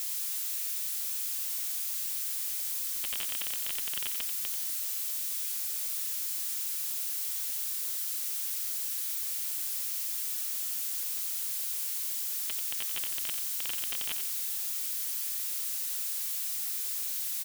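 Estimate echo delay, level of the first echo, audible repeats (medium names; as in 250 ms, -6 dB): 89 ms, -8.0 dB, 2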